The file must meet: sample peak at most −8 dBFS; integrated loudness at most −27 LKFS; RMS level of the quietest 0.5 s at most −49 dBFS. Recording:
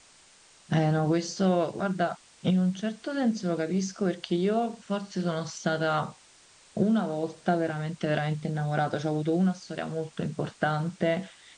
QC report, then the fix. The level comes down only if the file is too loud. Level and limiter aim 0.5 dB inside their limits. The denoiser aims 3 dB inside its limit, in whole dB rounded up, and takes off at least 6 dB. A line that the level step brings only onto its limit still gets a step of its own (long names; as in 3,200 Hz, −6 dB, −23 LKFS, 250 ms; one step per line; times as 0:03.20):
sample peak −12.0 dBFS: in spec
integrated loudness −28.5 LKFS: in spec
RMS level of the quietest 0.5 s −57 dBFS: in spec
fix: no processing needed